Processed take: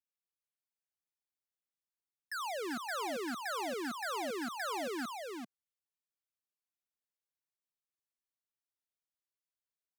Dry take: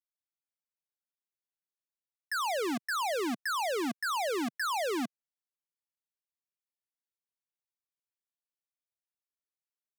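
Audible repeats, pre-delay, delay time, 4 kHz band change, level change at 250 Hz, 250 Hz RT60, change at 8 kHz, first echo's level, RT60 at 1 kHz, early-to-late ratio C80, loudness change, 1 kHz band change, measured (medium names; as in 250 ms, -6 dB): 1, no reverb, 391 ms, -5.5 dB, -5.5 dB, no reverb, -5.5 dB, -4.5 dB, no reverb, no reverb, -6.0 dB, -5.5 dB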